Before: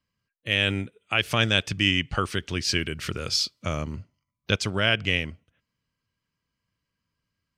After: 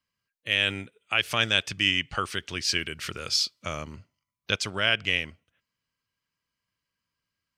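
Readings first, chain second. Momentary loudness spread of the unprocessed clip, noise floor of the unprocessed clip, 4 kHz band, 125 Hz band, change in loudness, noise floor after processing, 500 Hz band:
11 LU, -83 dBFS, 0.0 dB, -9.0 dB, -1.0 dB, under -85 dBFS, -4.5 dB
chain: low shelf 480 Hz -9.5 dB

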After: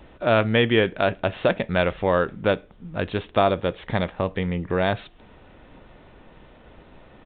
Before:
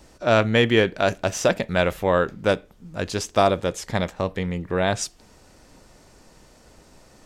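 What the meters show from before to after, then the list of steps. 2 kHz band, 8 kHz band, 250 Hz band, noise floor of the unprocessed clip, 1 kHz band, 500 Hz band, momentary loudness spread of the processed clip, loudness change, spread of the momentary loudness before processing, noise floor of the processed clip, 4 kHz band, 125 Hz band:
-0.5 dB, under -40 dB, -0.5 dB, -53 dBFS, -1.0 dB, -0.5 dB, 9 LU, -1.0 dB, 10 LU, -51 dBFS, -2.0 dB, 0.0 dB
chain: in parallel at +1 dB: compressor, threshold -28 dBFS, peak gain reduction 14.5 dB; on the sum: downsampling 8000 Hz; gain -3 dB

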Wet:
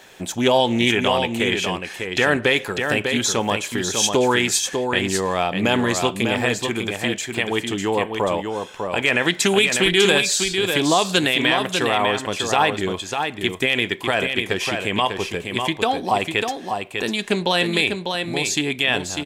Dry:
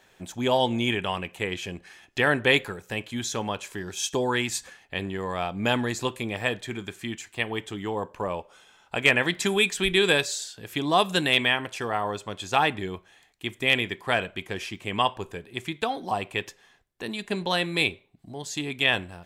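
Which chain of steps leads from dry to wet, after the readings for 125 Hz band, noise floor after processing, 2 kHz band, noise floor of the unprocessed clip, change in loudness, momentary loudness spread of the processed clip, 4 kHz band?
+5.5 dB, -36 dBFS, +5.5 dB, -60 dBFS, +6.5 dB, 7 LU, +7.0 dB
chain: in parallel at 0 dB: compressor, threshold -38 dBFS, peak gain reduction 22 dB; on the sum: low shelf 160 Hz -9.5 dB; limiter -13.5 dBFS, peak gain reduction 8.5 dB; bell 1300 Hz -3 dB 1.8 oct; echo 0.598 s -5.5 dB; Doppler distortion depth 0.1 ms; gain +8.5 dB

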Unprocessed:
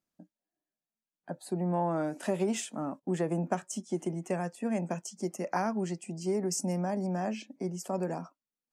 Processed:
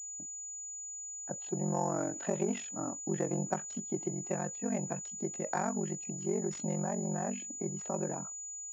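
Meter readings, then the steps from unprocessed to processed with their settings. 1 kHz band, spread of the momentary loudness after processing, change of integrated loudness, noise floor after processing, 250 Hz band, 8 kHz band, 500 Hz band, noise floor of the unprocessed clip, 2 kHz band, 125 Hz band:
-3.0 dB, 7 LU, -2.5 dB, -43 dBFS, -3.0 dB, +7.0 dB, -3.0 dB, under -85 dBFS, -3.5 dB, -2.5 dB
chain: ring modulator 23 Hz; pulse-width modulation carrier 6900 Hz

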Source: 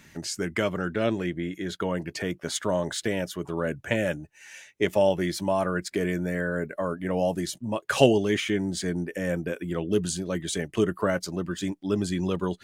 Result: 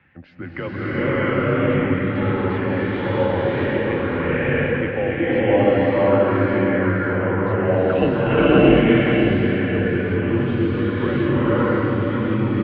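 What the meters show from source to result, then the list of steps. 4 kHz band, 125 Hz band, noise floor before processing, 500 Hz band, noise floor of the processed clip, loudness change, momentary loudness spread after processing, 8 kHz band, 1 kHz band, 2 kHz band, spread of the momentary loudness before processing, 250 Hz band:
+0.5 dB, +10.5 dB, -55 dBFS, +8.0 dB, -29 dBFS, +8.5 dB, 6 LU, under -35 dB, +8.5 dB, +9.0 dB, 8 LU, +9.5 dB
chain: mistuned SSB -78 Hz 160–2800 Hz; feedback echo 0.544 s, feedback 41%, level -7.5 dB; bloom reverb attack 0.67 s, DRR -11.5 dB; gain -3 dB

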